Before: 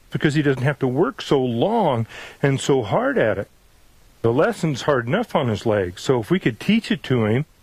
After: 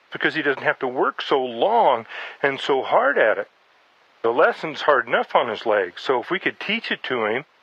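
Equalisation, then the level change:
high-pass filter 690 Hz 12 dB per octave
high-frequency loss of the air 280 metres
+7.5 dB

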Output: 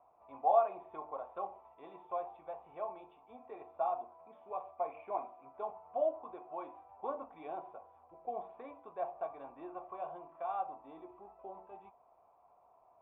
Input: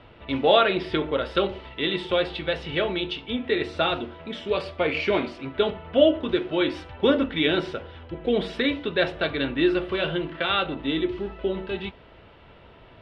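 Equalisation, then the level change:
dynamic equaliser 830 Hz, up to +4 dB, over −39 dBFS, Q 2.3
formant resonators in series a
low-shelf EQ 210 Hz −8 dB
−1.0 dB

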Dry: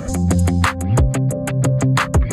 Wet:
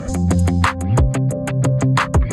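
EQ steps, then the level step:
high-frequency loss of the air 50 metres
high-shelf EQ 11,000 Hz +7 dB
dynamic equaliser 1,000 Hz, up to +4 dB, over −37 dBFS, Q 5.3
0.0 dB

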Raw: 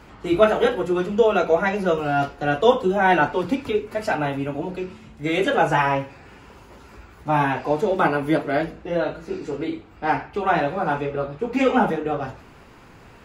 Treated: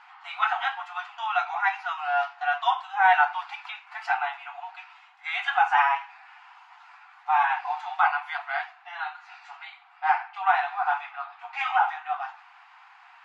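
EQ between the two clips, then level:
linear-phase brick-wall high-pass 700 Hz
low-pass filter 3,100 Hz 12 dB per octave
0.0 dB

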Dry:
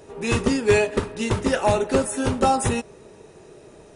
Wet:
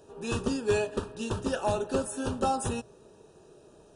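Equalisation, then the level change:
Butterworth band-reject 2,100 Hz, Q 2.6
mains-hum notches 60/120 Hz
−8.5 dB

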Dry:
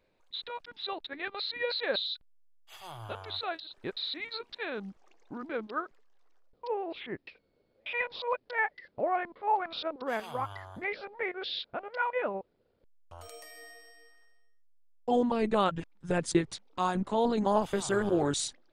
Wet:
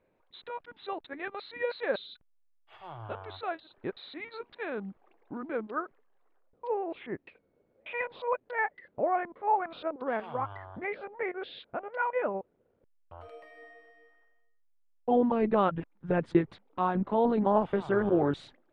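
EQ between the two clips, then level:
high-frequency loss of the air 490 metres
low-shelf EQ 65 Hz −10.5 dB
high-shelf EQ 4,200 Hz −6 dB
+3.5 dB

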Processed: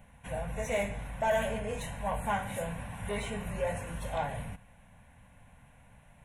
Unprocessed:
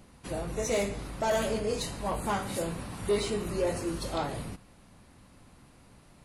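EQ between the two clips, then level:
bass and treble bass +1 dB, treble −3 dB
parametric band 1,400 Hz +12 dB 0.44 octaves
phaser with its sweep stopped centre 1,300 Hz, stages 6
0.0 dB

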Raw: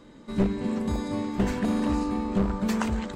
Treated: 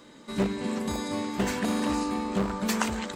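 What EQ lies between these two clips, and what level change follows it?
spectral tilt +2 dB per octave
low-shelf EQ 60 Hz −7.5 dB
+2.0 dB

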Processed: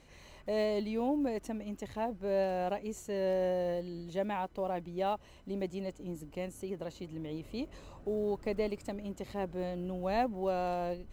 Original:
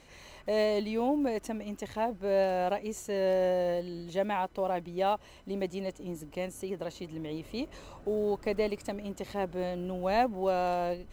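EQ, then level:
low-shelf EQ 330 Hz +5.5 dB
−5.5 dB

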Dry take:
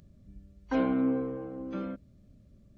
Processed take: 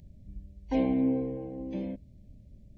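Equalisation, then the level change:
Chebyshev band-stop filter 860–2,000 Hz, order 2
low-shelf EQ 120 Hz +10 dB
0.0 dB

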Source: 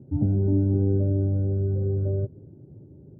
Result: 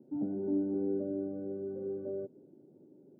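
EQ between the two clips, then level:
high-pass filter 230 Hz 24 dB per octave
−5.0 dB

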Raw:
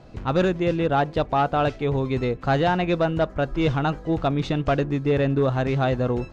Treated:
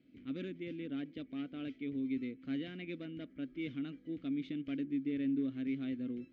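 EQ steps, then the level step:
formant filter i
−5.5 dB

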